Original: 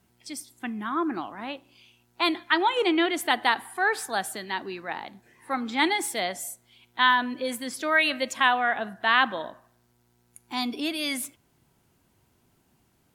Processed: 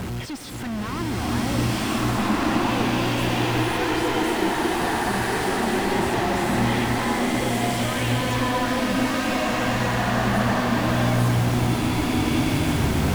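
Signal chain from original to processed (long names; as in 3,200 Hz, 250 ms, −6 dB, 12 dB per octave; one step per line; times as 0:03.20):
sign of each sample alone
low-pass filter 2,200 Hz 6 dB per octave
parametric band 84 Hz +5.5 dB 2.7 octaves
slow-attack reverb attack 1,510 ms, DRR −8 dB
level −2 dB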